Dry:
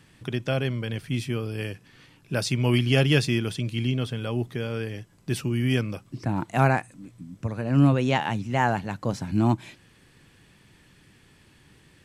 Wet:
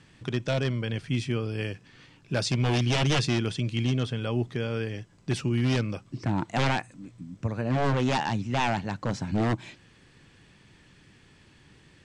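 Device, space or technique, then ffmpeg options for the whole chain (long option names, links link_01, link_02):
synthesiser wavefolder: -af "aeval=exprs='0.126*(abs(mod(val(0)/0.126+3,4)-2)-1)':channel_layout=same,lowpass=frequency=8000:width=0.5412,lowpass=frequency=8000:width=1.3066"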